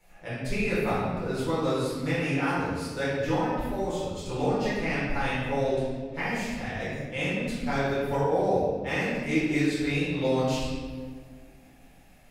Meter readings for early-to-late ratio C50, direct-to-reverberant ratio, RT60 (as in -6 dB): -2.0 dB, -11.5 dB, 1.7 s